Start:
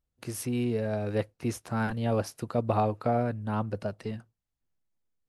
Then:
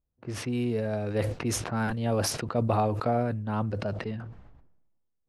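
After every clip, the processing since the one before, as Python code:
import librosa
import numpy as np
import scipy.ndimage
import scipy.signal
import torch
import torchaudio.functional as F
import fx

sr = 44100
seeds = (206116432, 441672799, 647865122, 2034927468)

y = fx.env_lowpass(x, sr, base_hz=960.0, full_db=-25.0)
y = fx.sustainer(y, sr, db_per_s=45.0)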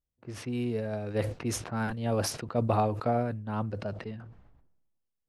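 y = fx.upward_expand(x, sr, threshold_db=-35.0, expansion=1.5)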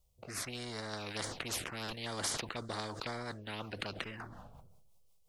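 y = fx.rotary_switch(x, sr, hz=0.75, then_hz=5.5, switch_at_s=2.33)
y = fx.env_phaser(y, sr, low_hz=280.0, high_hz=2600.0, full_db=-28.5)
y = fx.spectral_comp(y, sr, ratio=4.0)
y = F.gain(torch.from_numpy(y), -2.0).numpy()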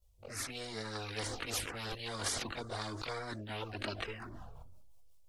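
y = fx.chorus_voices(x, sr, voices=6, hz=0.54, base_ms=21, depth_ms=2.2, mix_pct=70)
y = F.gain(torch.from_numpy(y), 2.5).numpy()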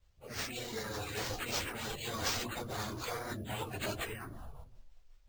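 y = fx.phase_scramble(x, sr, seeds[0], window_ms=50)
y = np.repeat(y[::4], 4)[:len(y)]
y = F.gain(torch.from_numpy(y), 1.5).numpy()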